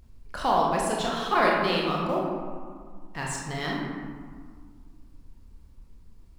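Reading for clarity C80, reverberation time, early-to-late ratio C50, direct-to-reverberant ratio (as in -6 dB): 2.0 dB, 1.9 s, 0.5 dB, -3.0 dB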